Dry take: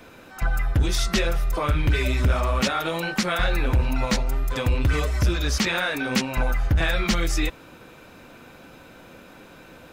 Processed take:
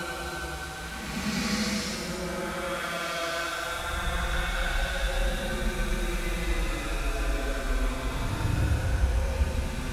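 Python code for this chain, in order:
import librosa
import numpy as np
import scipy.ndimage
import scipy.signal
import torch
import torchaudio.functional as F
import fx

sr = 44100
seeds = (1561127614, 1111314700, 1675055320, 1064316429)

y = fx.delta_mod(x, sr, bps=64000, step_db=-26.0)
y = fx.echo_split(y, sr, split_hz=1700.0, low_ms=317, high_ms=127, feedback_pct=52, wet_db=-7.5)
y = fx.paulstretch(y, sr, seeds[0], factor=13.0, window_s=0.1, from_s=3.08)
y = y * librosa.db_to_amplitude(-8.0)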